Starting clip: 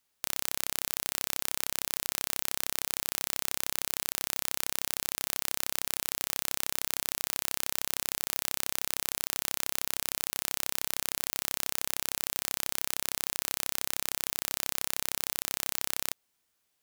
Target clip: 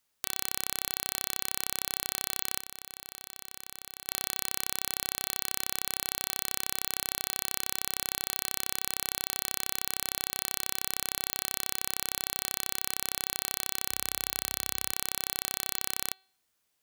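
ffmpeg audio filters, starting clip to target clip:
ffmpeg -i in.wav -filter_complex "[0:a]asettb=1/sr,asplit=3[link_01][link_02][link_03];[link_01]atrim=end=13.904[link_04];[link_02]atrim=start=13.9:end=14.92,asetpts=PTS-STARTPTS,afade=type=in:duration=0.004:curve=qsin,afade=type=out:start_time=1.016:duration=0.004:curve=qsin,highpass=frequency=42:width=0.5412,highpass=frequency=42:width=1.3066[link_05];[link_03]atrim=start=14.916[link_06];[link_04][link_05]acrossfade=duration=0.004:curve1=hsin:curve2=qsin[link_07];[link_07][link_06]acrossfade=duration=0.004:curve1=qsin:curve2=hsin,bandreject=frequency=381:width_type=h:width=4,bandreject=frequency=762:width_type=h:width=4,bandreject=frequency=1143:width_type=h:width=4,bandreject=frequency=1524:width_type=h:width=4,bandreject=frequency=1905:width_type=h:width=4,bandreject=frequency=2286:width_type=h:width=4,bandreject=frequency=2667:width_type=h:width=4,bandreject=frequency=3048:width_type=h:width=4,bandreject=frequency=3429:width_type=h:width=4,bandreject=frequency=3810:width_type=h:width=4,bandreject=frequency=4191:width_type=h:width=4,bandreject=frequency=4572:width_type=h:width=4,asettb=1/sr,asplit=3[link_08][link_09][link_10];[link_08]atrim=end=2.604[link_11];[link_09]atrim=start=2.6:end=4.09,asetpts=PTS-STARTPTS,afade=type=in:duration=0.004:curve=qsin,afade=type=out:start_time=1.486:duration=0.004:curve=qsin,acompressor=threshold=-36dB:ratio=6[link_12];[link_10]atrim=start=4.086[link_13];[link_11][link_12]acrossfade=duration=0.004:curve1=hsin:curve2=qsin[link_14];[link_14][link_13]acrossfade=duration=0.004:curve1=qsin:curve2=hsin" out.wav

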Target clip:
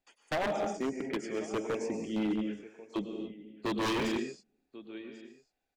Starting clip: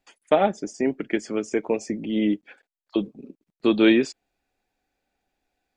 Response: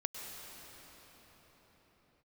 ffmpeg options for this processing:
-filter_complex "[0:a]aecho=1:1:1092:0.106[link_01];[1:a]atrim=start_sample=2205,afade=type=out:start_time=0.36:duration=0.01,atrim=end_sample=16317[link_02];[link_01][link_02]afir=irnorm=-1:irlink=0,aeval=exprs='0.119*(abs(mod(val(0)/0.119+3,4)-2)-1)':channel_layout=same,volume=-7dB"

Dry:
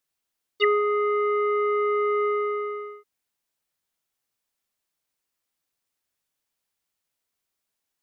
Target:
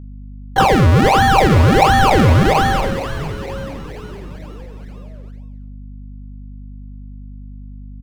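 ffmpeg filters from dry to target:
ffmpeg -i in.wav -filter_complex "[0:a]acompressor=threshold=-24dB:ratio=6,adynamicequalizer=threshold=0.01:dfrequency=600:dqfactor=1.2:tfrequency=600:tqfactor=1.2:attack=5:release=100:ratio=0.375:range=2.5:mode=boostabove:tftype=bell,asetrate=83250,aresample=44100,atempo=0.529732,acrusher=samples=34:mix=1:aa=0.000001:lfo=1:lforange=34:lforate=1.4,asplit=2[link_01][link_02];[link_02]asplit=6[link_03][link_04][link_05][link_06][link_07][link_08];[link_03]adelay=463,afreqshift=-120,volume=-11dB[link_09];[link_04]adelay=926,afreqshift=-240,volume=-15.9dB[link_10];[link_05]adelay=1389,afreqshift=-360,volume=-20.8dB[link_11];[link_06]adelay=1852,afreqshift=-480,volume=-25.6dB[link_12];[link_07]adelay=2315,afreqshift=-600,volume=-30.5dB[link_13];[link_08]adelay=2778,afreqshift=-720,volume=-35.4dB[link_14];[link_09][link_10][link_11][link_12][link_13][link_14]amix=inputs=6:normalize=0[link_15];[link_01][link_15]amix=inputs=2:normalize=0,acontrast=82,bandreject=frequency=670:width=12,agate=range=-12dB:threshold=-54dB:ratio=16:detection=peak,lowpass=frequency=1700:poles=1,equalizer=frequency=280:width_type=o:width=1.1:gain=-5.5,aeval=exprs='val(0)+0.00891*(sin(2*PI*50*n/s)+sin(2*PI*2*50*n/s)/2+sin(2*PI*3*50*n/s)/3+sin(2*PI*4*50*n/s)/4+sin(2*PI*5*50*n/s)/5)':channel_layout=same,asplit=2[link_16][link_17];[link_17]adelay=44,volume=-13.5dB[link_18];[link_16][link_18]amix=inputs=2:normalize=0,volume=8.5dB" out.wav

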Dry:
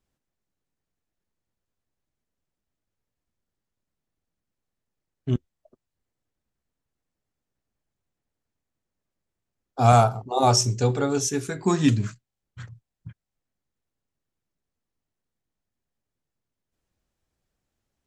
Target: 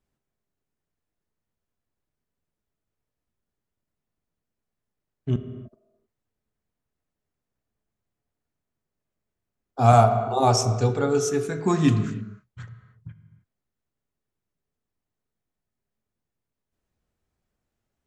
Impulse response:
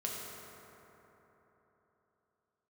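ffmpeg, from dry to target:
-filter_complex "[0:a]asplit=2[link_01][link_02];[1:a]atrim=start_sample=2205,afade=type=out:start_time=0.37:duration=0.01,atrim=end_sample=16758,lowpass=3100[link_03];[link_02][link_03]afir=irnorm=-1:irlink=0,volume=-4.5dB[link_04];[link_01][link_04]amix=inputs=2:normalize=0,volume=-3.5dB"

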